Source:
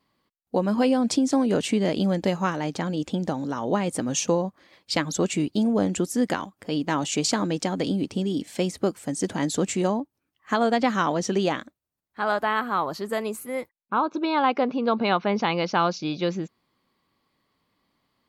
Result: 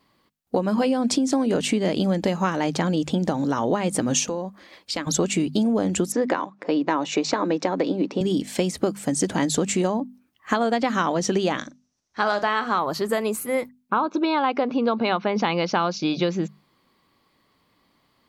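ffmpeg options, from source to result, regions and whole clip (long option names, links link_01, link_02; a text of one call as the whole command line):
ffmpeg -i in.wav -filter_complex "[0:a]asettb=1/sr,asplit=3[link_01][link_02][link_03];[link_01]atrim=end=4.254[link_04];[link_02]atrim=start=4.25:end=5.07,asetpts=PTS-STARTPTS,afade=type=in:duration=0.004:curve=qsin,afade=type=out:start_time=0.816:duration=0.004:curve=qsin,equalizer=frequency=130:width_type=o:width=0.44:gain=-13.5,acompressor=threshold=-36dB:ratio=2.5:attack=3.2:release=140:knee=1:detection=peak[link_05];[link_03]atrim=start=5.066[link_06];[link_04][link_05]acrossfade=duration=0.004:curve1=hsin:curve2=qsin[link_07];[link_07][link_06]acrossfade=duration=0.004:curve1=qsin:curve2=hsin,asettb=1/sr,asplit=3[link_08][link_09][link_10];[link_08]atrim=end=6.124[link_11];[link_09]atrim=start=6.12:end=8.21,asetpts=PTS-STARTPTS,afade=type=in:duration=0.004:curve=qsin,afade=type=out:start_time=2.086:duration=0.004:curve=qsin,highpass=frequency=190:width=0.5412,highpass=frequency=190:width=1.3066,equalizer=frequency=220:width_type=q:width=4:gain=-8,equalizer=frequency=310:width_type=q:width=4:gain=3,equalizer=frequency=530:width_type=q:width=4:gain=4,equalizer=frequency=1000:width_type=q:width=4:gain=5,equalizer=frequency=2900:width_type=q:width=4:gain=-3,equalizer=frequency=4700:width_type=q:width=4:gain=-7,lowpass=frequency=5200:width=0.5412,lowpass=frequency=5200:width=1.3066,bandreject=frequency=3200:width=8.6[link_12];[link_10]atrim=start=8.206[link_13];[link_11][link_12]acrossfade=duration=0.004:curve1=hsin:curve2=qsin[link_14];[link_14][link_13]acrossfade=duration=0.004:curve1=qsin:curve2=hsin,asettb=1/sr,asplit=3[link_15][link_16][link_17];[link_15]atrim=end=11.584[link_18];[link_16]atrim=start=11.58:end=12.79,asetpts=PTS-STARTPTS,afade=type=in:duration=0.004:curve=qsin,afade=type=out:start_time=1.206:duration=0.004:curve=qsin,lowpass=frequency=5900:width_type=q:width=7.5,asplit=2[link_19][link_20];[link_20]adelay=39,volume=-13dB[link_21];[link_19][link_21]amix=inputs=2:normalize=0,atrim=end_sample=53361[link_22];[link_17]atrim=start=12.786[link_23];[link_18][link_22]acrossfade=duration=0.004:curve1=hsin:curve2=qsin[link_24];[link_24][link_23]acrossfade=duration=0.004:curve1=qsin:curve2=hsin,bandreject=frequency=50:width_type=h:width=6,bandreject=frequency=100:width_type=h:width=6,bandreject=frequency=150:width_type=h:width=6,bandreject=frequency=200:width_type=h:width=6,bandreject=frequency=250:width_type=h:width=6,acompressor=threshold=-26dB:ratio=6,volume=7.5dB" out.wav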